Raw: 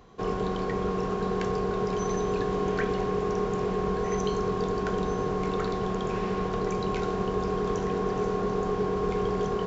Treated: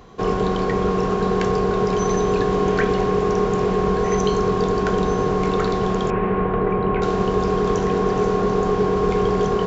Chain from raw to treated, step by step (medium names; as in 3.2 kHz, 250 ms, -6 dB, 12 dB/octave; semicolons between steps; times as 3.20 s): 6.10–7.02 s: low-pass 2.4 kHz 24 dB/octave; trim +8.5 dB